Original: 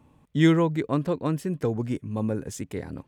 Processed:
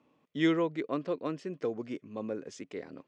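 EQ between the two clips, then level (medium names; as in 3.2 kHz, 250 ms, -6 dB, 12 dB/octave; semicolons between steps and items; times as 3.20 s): cabinet simulation 330–5600 Hz, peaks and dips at 870 Hz -8 dB, 1.6 kHz -4 dB, 3.8 kHz -3 dB; -3.5 dB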